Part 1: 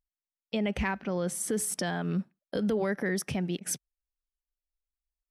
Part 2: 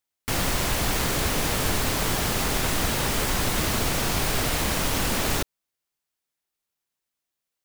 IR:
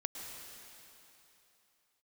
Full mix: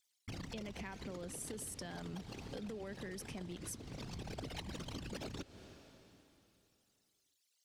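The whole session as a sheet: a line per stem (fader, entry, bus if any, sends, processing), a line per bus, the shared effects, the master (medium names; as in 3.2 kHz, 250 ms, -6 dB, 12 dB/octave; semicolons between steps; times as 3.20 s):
-6.5 dB, 0.00 s, no send, none
-5.0 dB, 0.00 s, send -12.5 dB, resonances exaggerated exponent 3; peaking EQ 4.8 kHz +15 dB 2.8 oct; auto duck -17 dB, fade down 1.10 s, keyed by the first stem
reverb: on, RT60 3.1 s, pre-delay 101 ms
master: high-pass 190 Hz 6 dB/octave; peaking EQ 1.2 kHz -5 dB 2.5 oct; compression, threshold -42 dBFS, peak gain reduction 11.5 dB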